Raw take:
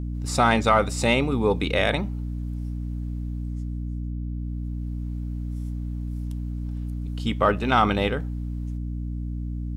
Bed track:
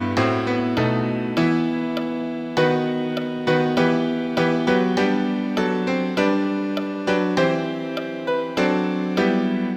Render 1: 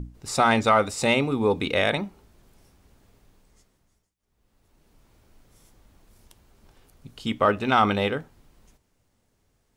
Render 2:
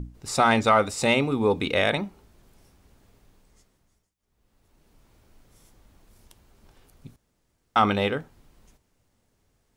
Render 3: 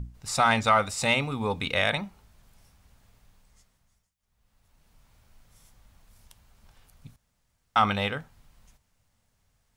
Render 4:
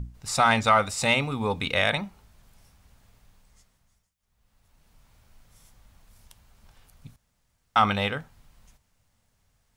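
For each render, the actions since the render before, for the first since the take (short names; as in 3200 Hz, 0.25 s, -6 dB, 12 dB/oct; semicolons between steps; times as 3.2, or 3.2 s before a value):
notches 60/120/180/240/300 Hz
7.16–7.76 room tone
bell 350 Hz -13 dB 1.1 oct
gain +1.5 dB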